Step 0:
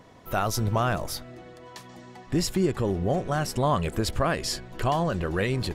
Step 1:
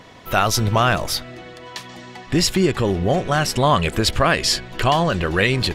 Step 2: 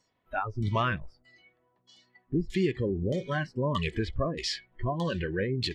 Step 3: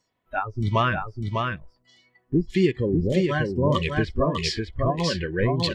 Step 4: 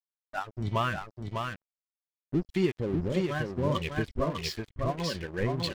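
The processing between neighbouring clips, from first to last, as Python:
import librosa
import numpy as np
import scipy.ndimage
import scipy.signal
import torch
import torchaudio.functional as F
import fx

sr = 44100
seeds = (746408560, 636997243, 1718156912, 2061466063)

y1 = fx.peak_eq(x, sr, hz=3000.0, db=8.5, octaves=2.1)
y1 = F.gain(torch.from_numpy(y1), 6.0).numpy()
y2 = fx.filter_lfo_lowpass(y1, sr, shape='saw_down', hz=1.6, low_hz=470.0, high_hz=7100.0, q=0.78)
y2 = fx.noise_reduce_blind(y2, sr, reduce_db=23)
y2 = F.gain(torch.from_numpy(y2), -9.0).numpy()
y3 = y2 + 10.0 ** (-3.0 / 20.0) * np.pad(y2, (int(600 * sr / 1000.0), 0))[:len(y2)]
y3 = fx.upward_expand(y3, sr, threshold_db=-39.0, expansion=1.5)
y3 = F.gain(torch.from_numpy(y3), 7.5).numpy()
y4 = np.sign(y3) * np.maximum(np.abs(y3) - 10.0 ** (-35.5 / 20.0), 0.0)
y4 = F.gain(torch.from_numpy(y4), -5.5).numpy()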